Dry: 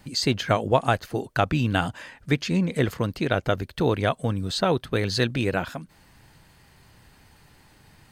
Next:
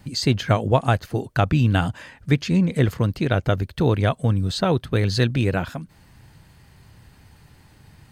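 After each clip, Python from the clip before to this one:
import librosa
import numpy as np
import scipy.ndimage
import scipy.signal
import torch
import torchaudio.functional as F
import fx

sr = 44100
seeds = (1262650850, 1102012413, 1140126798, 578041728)

y = fx.peak_eq(x, sr, hz=93.0, db=8.0, octaves=2.3)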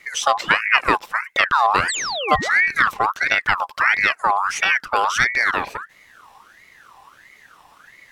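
y = fx.spec_paint(x, sr, seeds[0], shape='fall', start_s=1.88, length_s=0.62, low_hz=570.0, high_hz=6800.0, level_db=-26.0)
y = fx.ring_lfo(y, sr, carrier_hz=1500.0, swing_pct=40, hz=1.5)
y = y * librosa.db_to_amplitude(4.0)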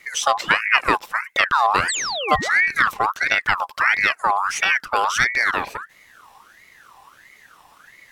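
y = fx.high_shelf(x, sr, hz=7300.0, db=5.0)
y = y * librosa.db_to_amplitude(-1.0)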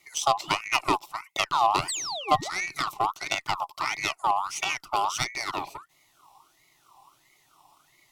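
y = fx.cheby_harmonics(x, sr, harmonics=(3, 6, 7, 8), levels_db=(-27, -29, -26, -34), full_scale_db=-1.5)
y = fx.fixed_phaser(y, sr, hz=330.0, stages=8)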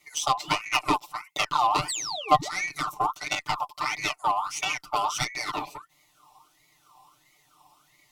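y = fx.spec_box(x, sr, start_s=2.8, length_s=0.32, low_hz=1700.0, high_hz=5300.0, gain_db=-8)
y = y + 0.9 * np.pad(y, (int(6.7 * sr / 1000.0), 0))[:len(y)]
y = y * librosa.db_to_amplitude(-2.5)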